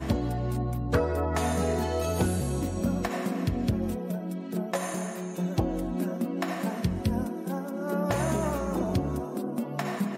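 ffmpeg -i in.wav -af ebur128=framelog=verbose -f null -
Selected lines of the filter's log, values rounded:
Integrated loudness:
  I:         -29.7 LUFS
  Threshold: -39.7 LUFS
Loudness range:
  LRA:         2.6 LU
  Threshold: -49.9 LUFS
  LRA low:   -30.9 LUFS
  LRA high:  -28.4 LUFS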